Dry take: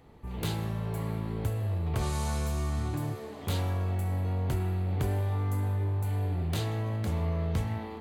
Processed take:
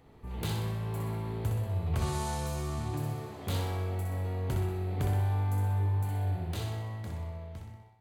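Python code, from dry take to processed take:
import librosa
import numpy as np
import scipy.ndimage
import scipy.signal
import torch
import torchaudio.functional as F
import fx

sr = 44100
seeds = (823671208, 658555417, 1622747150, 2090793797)

y = fx.fade_out_tail(x, sr, length_s=2.02)
y = fx.room_flutter(y, sr, wall_m=10.7, rt60_s=0.75)
y = y * 10.0 ** (-2.5 / 20.0)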